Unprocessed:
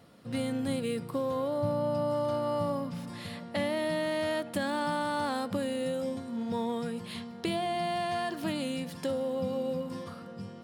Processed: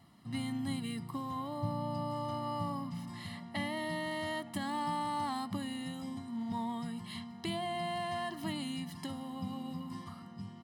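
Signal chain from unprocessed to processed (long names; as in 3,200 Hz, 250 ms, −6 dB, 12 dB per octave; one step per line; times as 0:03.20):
comb filter 1 ms, depth 96%
level −7 dB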